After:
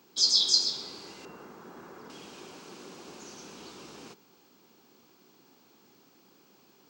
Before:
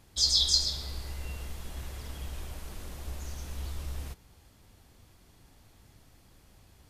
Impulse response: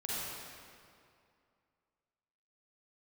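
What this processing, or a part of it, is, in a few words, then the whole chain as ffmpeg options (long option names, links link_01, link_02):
old television with a line whistle: -filter_complex "[0:a]asettb=1/sr,asplit=3[link_01][link_02][link_03];[link_01]atrim=end=1.254[link_04];[link_02]atrim=start=1.25:end=2.1,asetpts=PTS-STARTPTS,afade=type=in:duration=0.004:curve=qsin,afade=type=out:start_time=0.846:duration=0.004:curve=qsin,highshelf=frequency=2100:width_type=q:width=1.5:gain=-10.5[link_05];[link_03]atrim=start=2.096[link_06];[link_04][link_05]acrossfade=duration=0.004:curve1=hsin:curve2=qsin[link_07];[link_07][link_06]acrossfade=duration=0.004:curve1=qsin:curve2=hsin,highpass=frequency=200:width=0.5412,highpass=frequency=200:width=1.3066,equalizer=frequency=380:width_type=q:width=4:gain=5,equalizer=frequency=630:width_type=q:width=4:gain=-7,equalizer=frequency=1900:width_type=q:width=4:gain=-8,equalizer=frequency=3500:width_type=q:width=4:gain=-4,lowpass=frequency=6800:width=0.5412,lowpass=frequency=6800:width=1.3066,aeval=exprs='val(0)+0.000398*sin(2*PI*15734*n/s)':channel_layout=same,volume=3dB"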